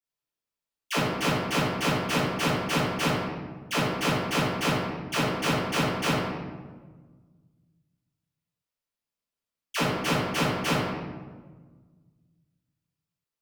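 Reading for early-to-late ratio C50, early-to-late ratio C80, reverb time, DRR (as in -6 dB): -1.5 dB, 1.5 dB, 1.4 s, -13.5 dB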